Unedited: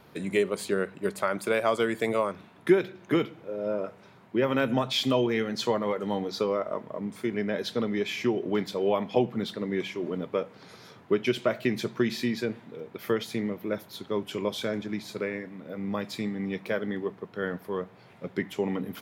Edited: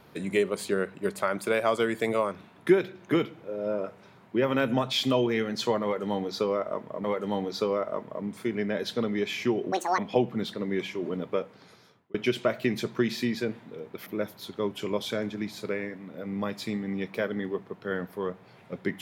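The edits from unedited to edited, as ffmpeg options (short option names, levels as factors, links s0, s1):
-filter_complex "[0:a]asplit=6[s0][s1][s2][s3][s4][s5];[s0]atrim=end=7.042[s6];[s1]atrim=start=5.828:end=8.514[s7];[s2]atrim=start=8.51:end=8.99,asetpts=PTS-STARTPTS,asetrate=80262,aresample=44100[s8];[s3]atrim=start=8.986:end=11.15,asetpts=PTS-STARTPTS,afade=t=out:st=1.364:d=0.8[s9];[s4]atrim=start=11.15:end=13.072,asetpts=PTS-STARTPTS,afade=t=in:d=0.004:c=hsin[s10];[s5]atrim=start=13.578[s11];[s6][s7]acrossfade=d=0.004:c1=hsin:c2=hsin[s12];[s12][s8]acrossfade=d=0.004:c1=hsin:c2=hsin[s13];[s9][s10]concat=n=2:v=0:a=1[s14];[s13][s14]acrossfade=d=0.004:c1=hsin:c2=hsin[s15];[s15][s11]acrossfade=d=0.004:c1=hsin:c2=hsin"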